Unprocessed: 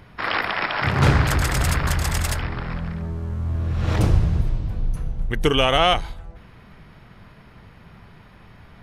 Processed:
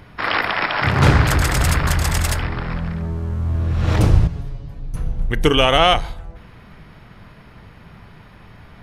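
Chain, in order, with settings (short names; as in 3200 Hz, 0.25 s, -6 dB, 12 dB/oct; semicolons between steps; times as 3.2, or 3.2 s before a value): 4.27–4.94 resonator 140 Hz, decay 0.18 s, harmonics all, mix 90%; FDN reverb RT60 0.61 s, high-frequency decay 0.55×, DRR 19 dB; gain +3.5 dB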